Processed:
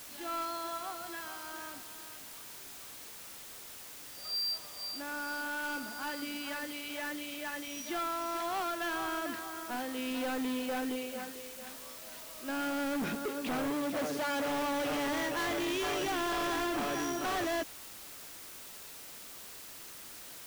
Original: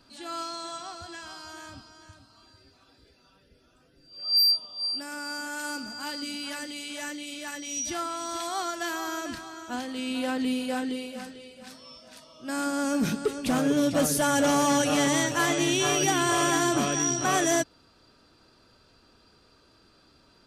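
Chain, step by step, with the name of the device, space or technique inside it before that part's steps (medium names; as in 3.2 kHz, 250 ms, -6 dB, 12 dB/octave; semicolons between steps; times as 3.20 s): aircraft radio (band-pass 300–2600 Hz; hard clipper -31.5 dBFS, distortion -5 dB; white noise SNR 11 dB); 13.70–14.50 s: high-pass 100 Hz 6 dB/octave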